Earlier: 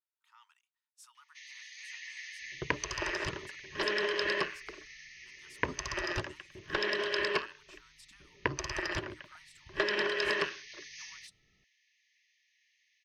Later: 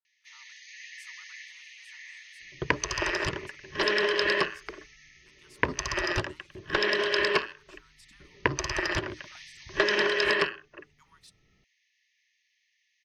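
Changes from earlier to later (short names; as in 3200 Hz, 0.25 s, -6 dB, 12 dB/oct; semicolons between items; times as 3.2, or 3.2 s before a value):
first sound: entry -1.10 s; second sound +6.0 dB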